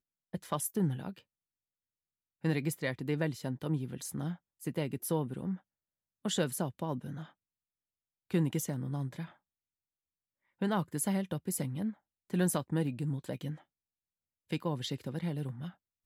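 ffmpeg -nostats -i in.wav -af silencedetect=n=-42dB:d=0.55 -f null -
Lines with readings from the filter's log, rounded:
silence_start: 1.19
silence_end: 2.44 | silence_duration: 1.25
silence_start: 5.56
silence_end: 6.25 | silence_duration: 0.69
silence_start: 7.26
silence_end: 8.31 | silence_duration: 1.05
silence_start: 9.26
silence_end: 10.62 | silence_duration: 1.36
silence_start: 13.55
silence_end: 14.51 | silence_duration: 0.95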